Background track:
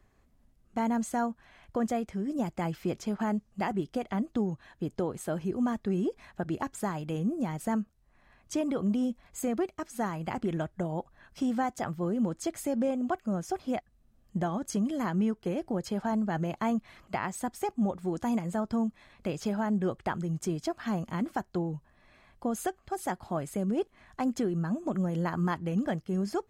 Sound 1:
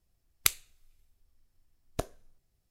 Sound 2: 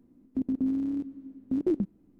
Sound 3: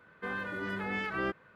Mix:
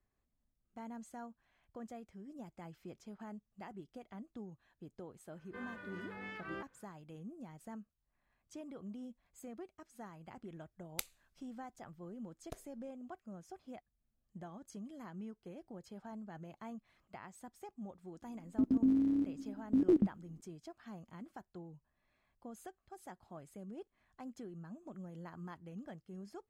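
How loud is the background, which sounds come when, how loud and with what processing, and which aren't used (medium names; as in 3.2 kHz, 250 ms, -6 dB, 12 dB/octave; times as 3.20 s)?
background track -18.5 dB
5.31 s: add 3 -12 dB
10.53 s: add 1 -15 dB
18.22 s: add 2 -1.5 dB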